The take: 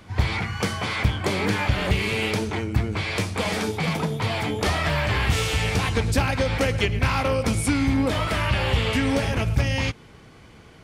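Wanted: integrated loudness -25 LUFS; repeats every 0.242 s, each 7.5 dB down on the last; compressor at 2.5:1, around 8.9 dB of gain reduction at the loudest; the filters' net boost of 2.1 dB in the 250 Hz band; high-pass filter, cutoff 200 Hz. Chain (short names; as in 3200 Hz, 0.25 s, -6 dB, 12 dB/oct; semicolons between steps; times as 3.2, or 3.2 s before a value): HPF 200 Hz; bell 250 Hz +4.5 dB; compressor 2.5:1, threshold -31 dBFS; feedback echo 0.242 s, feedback 42%, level -7.5 dB; gain +5.5 dB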